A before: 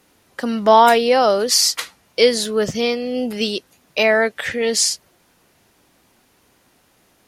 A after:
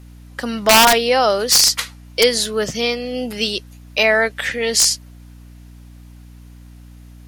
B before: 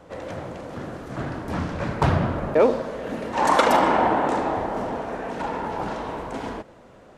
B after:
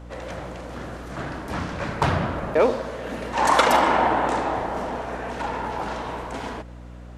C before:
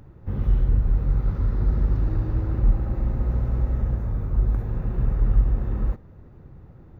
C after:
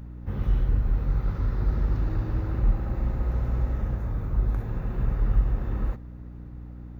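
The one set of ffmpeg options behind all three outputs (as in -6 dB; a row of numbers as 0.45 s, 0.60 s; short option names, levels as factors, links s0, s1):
-af "tiltshelf=f=790:g=-3.5,aeval=exprs='(mod(1.33*val(0)+1,2)-1)/1.33':c=same,aeval=exprs='val(0)+0.0112*(sin(2*PI*60*n/s)+sin(2*PI*2*60*n/s)/2+sin(2*PI*3*60*n/s)/3+sin(2*PI*4*60*n/s)/4+sin(2*PI*5*60*n/s)/5)':c=same"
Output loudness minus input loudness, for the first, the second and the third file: +1.5 LU, 0.0 LU, -3.0 LU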